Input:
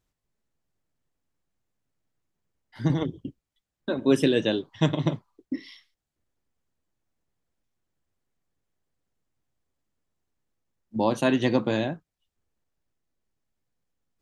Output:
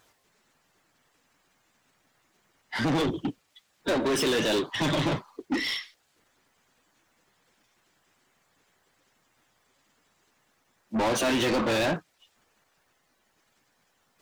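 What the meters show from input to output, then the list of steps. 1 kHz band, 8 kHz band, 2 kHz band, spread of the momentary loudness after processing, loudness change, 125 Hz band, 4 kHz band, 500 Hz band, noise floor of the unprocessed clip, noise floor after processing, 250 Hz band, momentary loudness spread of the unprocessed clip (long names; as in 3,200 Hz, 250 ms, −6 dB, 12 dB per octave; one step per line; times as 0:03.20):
+3.0 dB, +10.0 dB, +4.5 dB, 10 LU, −1.0 dB, −5.0 dB, +5.0 dB, −1.0 dB, below −85 dBFS, −71 dBFS, −2.5 dB, 16 LU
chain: spectral magnitudes quantised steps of 15 dB
brickwall limiter −19 dBFS, peak gain reduction 10.5 dB
mid-hump overdrive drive 29 dB, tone 6,100 Hz, clips at −19 dBFS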